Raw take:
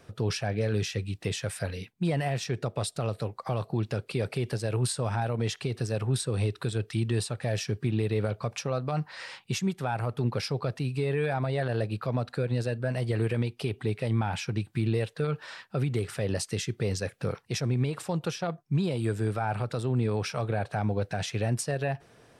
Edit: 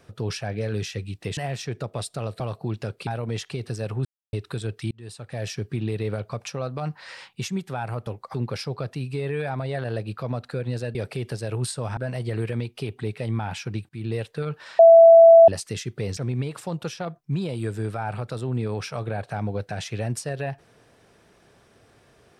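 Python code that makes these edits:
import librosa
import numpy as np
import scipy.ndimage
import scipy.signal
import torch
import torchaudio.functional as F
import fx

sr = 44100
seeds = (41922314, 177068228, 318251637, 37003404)

y = fx.edit(x, sr, fx.cut(start_s=1.37, length_s=0.82),
    fx.move(start_s=3.22, length_s=0.27, to_s=10.18),
    fx.move(start_s=4.16, length_s=1.02, to_s=12.79),
    fx.silence(start_s=6.16, length_s=0.28),
    fx.fade_in_span(start_s=7.02, length_s=0.59),
    fx.fade_in_from(start_s=14.71, length_s=0.26, floor_db=-16.0),
    fx.bleep(start_s=15.61, length_s=0.69, hz=664.0, db=-6.5),
    fx.cut(start_s=16.99, length_s=0.6), tone=tone)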